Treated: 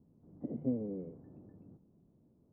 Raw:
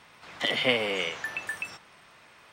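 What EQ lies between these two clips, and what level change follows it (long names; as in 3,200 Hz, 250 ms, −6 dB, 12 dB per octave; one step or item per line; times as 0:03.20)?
transistor ladder low-pass 340 Hz, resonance 30%
+5.5 dB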